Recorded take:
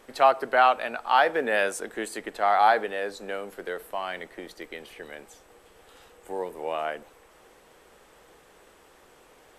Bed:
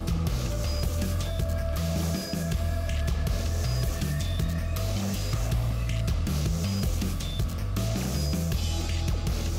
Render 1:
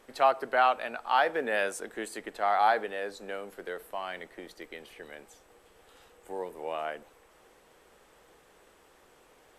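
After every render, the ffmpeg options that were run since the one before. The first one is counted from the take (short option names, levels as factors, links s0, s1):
-af "volume=0.596"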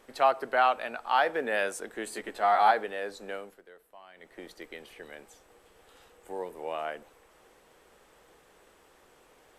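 -filter_complex "[0:a]asettb=1/sr,asplit=3[s0][s1][s2];[s0]atrim=end=2.054[s3];[s1]atrim=start=2.05:end=2.71,asetpts=PTS-STARTPTS,afade=t=in:d=0.004:c=qsin,afade=t=out:st=0.656:d=0.004:c=qsin,asplit=2[s4][s5];[s5]adelay=14,volume=0.75[s6];[s4][s6]amix=inputs=2:normalize=0,atrim=end_sample=29106[s7];[s2]atrim=start=2.706[s8];[s3][s7]acrossfade=d=0.004:c1=hsin:c2=qsin[s9];[s9][s8]acrossfade=d=0.004:c1=qsin:c2=hsin,asplit=3[s10][s11][s12];[s10]atrim=end=3.62,asetpts=PTS-STARTPTS,afade=t=out:st=3.35:d=0.27:silence=0.16788[s13];[s11]atrim=start=3.62:end=4.15,asetpts=PTS-STARTPTS,volume=0.168[s14];[s12]atrim=start=4.15,asetpts=PTS-STARTPTS,afade=t=in:d=0.27:silence=0.16788[s15];[s13][s14][s15]concat=n=3:v=0:a=1"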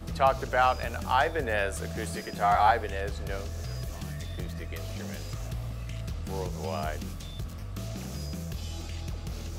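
-filter_complex "[1:a]volume=0.376[s0];[0:a][s0]amix=inputs=2:normalize=0"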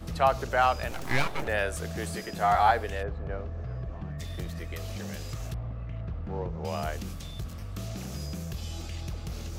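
-filter_complex "[0:a]asettb=1/sr,asplit=3[s0][s1][s2];[s0]atrim=end=0.914[s3];[s1]atrim=start=0.91:end=1.48,asetpts=PTS-STARTPTS,afade=t=in:d=0.004:c=qsin,afade=t=out:st=0.566:d=0.004:c=qsin,aeval=exprs='abs(val(0))':c=same[s4];[s2]atrim=start=1.476[s5];[s3][s4]acrossfade=d=0.004:c1=hsin:c2=qsin[s6];[s6][s5]acrossfade=d=0.004:c1=qsin:c2=hsin,asplit=3[s7][s8][s9];[s7]afade=t=out:st=3.02:d=0.02[s10];[s8]lowpass=1400,afade=t=in:st=3.02:d=0.02,afade=t=out:st=4.18:d=0.02[s11];[s9]afade=t=in:st=4.18:d=0.02[s12];[s10][s11][s12]amix=inputs=3:normalize=0,asettb=1/sr,asplit=3[s13][s14][s15];[s13]atrim=end=5.544[s16];[s14]atrim=start=5.54:end=6.65,asetpts=PTS-STARTPTS,afade=t=in:d=0.004:c=qsin,afade=t=out:st=1.106:d=0.004:c=qsin,lowpass=1500[s17];[s15]atrim=start=6.646[s18];[s16][s17]acrossfade=d=0.004:c1=hsin:c2=qsin[s19];[s19][s18]acrossfade=d=0.004:c1=qsin:c2=hsin"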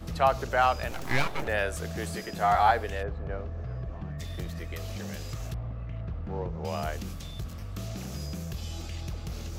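-af "equalizer=f=9100:t=o:w=0.2:g=-3.5"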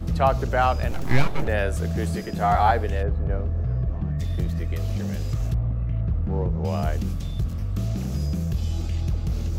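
-af "lowshelf=f=400:g=12"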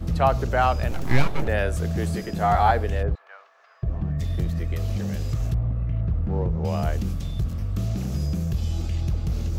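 -filter_complex "[0:a]asettb=1/sr,asplit=3[s0][s1][s2];[s0]atrim=end=3.154[s3];[s1]atrim=start=3.15:end=3.83,asetpts=PTS-STARTPTS,afade=t=in:d=0.004:c=qsin,afade=t=out:st=0.676:d=0.004:c=qsin,highpass=f=1000:w=0.5412,highpass=f=1000:w=1.3066[s4];[s2]atrim=start=3.826[s5];[s3][s4]acrossfade=d=0.004:c1=hsin:c2=qsin[s6];[s6][s5]acrossfade=d=0.004:c1=qsin:c2=hsin"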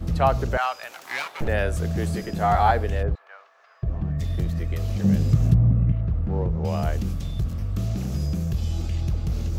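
-filter_complex "[0:a]asettb=1/sr,asplit=3[s0][s1][s2];[s0]atrim=end=0.574[s3];[s1]atrim=start=0.57:end=1.41,asetpts=PTS-STARTPTS,afade=t=in:d=0.004:c=qsin,afade=t=out:st=0.836:d=0.004:c=qsin,highpass=1000[s4];[s2]atrim=start=1.406[s5];[s3][s4]acrossfade=d=0.004:c1=hsin:c2=qsin[s6];[s6][s5]acrossfade=d=0.004:c1=qsin:c2=hsin,asettb=1/sr,asplit=3[s7][s8][s9];[s7]atrim=end=5.044[s10];[s8]atrim=start=5.04:end=5.92,asetpts=PTS-STARTPTS,afade=t=in:d=0.004:c=qsin,afade=t=out:st=0.876:d=0.004:c=qsin,equalizer=f=180:t=o:w=2:g=12[s11];[s9]atrim=start=5.916[s12];[s10][s11]acrossfade=d=0.004:c1=hsin:c2=qsin[s13];[s13][s12]acrossfade=d=0.004:c1=qsin:c2=hsin"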